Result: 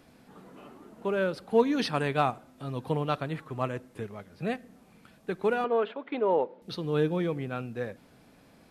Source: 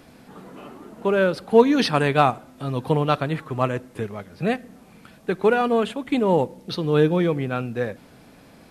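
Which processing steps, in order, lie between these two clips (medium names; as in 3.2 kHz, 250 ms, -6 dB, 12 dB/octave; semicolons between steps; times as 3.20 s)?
5.64–6.62 s: cabinet simulation 330–3500 Hz, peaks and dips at 420 Hz +6 dB, 600 Hz +4 dB, 960 Hz +4 dB, 1.4 kHz +5 dB, 3 kHz -3 dB; trim -8.5 dB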